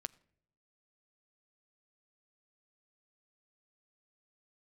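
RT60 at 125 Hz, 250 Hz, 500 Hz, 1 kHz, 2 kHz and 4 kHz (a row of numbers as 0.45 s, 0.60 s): 1.0 s, 0.85 s, 0.80 s, 0.55 s, 0.55 s, 0.40 s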